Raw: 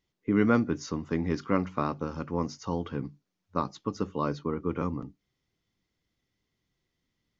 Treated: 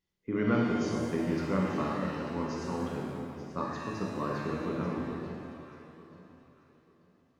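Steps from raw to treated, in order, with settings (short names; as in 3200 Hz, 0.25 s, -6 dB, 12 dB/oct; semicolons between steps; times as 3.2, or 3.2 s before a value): echo with dull and thin repeats by turns 0.443 s, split 1000 Hz, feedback 51%, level -7.5 dB; shimmer reverb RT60 1.5 s, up +7 st, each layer -8 dB, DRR -2.5 dB; gain -7.5 dB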